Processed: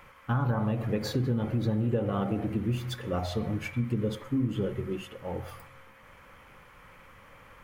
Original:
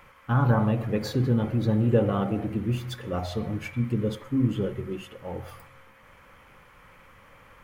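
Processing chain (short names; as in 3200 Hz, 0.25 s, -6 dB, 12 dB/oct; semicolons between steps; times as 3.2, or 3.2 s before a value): compressor 6:1, threshold -24 dBFS, peak gain reduction 8.5 dB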